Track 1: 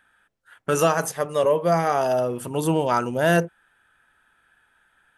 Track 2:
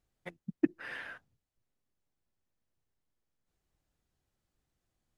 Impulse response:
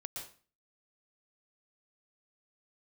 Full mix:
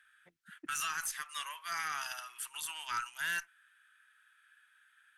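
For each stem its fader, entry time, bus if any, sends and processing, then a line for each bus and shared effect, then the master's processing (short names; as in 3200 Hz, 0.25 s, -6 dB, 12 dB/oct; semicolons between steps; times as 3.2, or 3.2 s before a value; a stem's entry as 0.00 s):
-1.5 dB, 0.00 s, no send, inverse Chebyshev high-pass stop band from 550 Hz, stop band 50 dB
-16.5 dB, 0.00 s, no send, auto duck -18 dB, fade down 1.50 s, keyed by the first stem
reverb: off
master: tube stage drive 21 dB, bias 0.2; limiter -26.5 dBFS, peak gain reduction 6.5 dB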